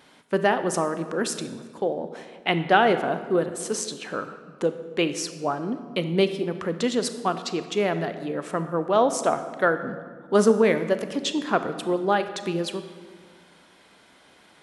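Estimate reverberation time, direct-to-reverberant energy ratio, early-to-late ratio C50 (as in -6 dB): 1.8 s, 9.5 dB, 10.5 dB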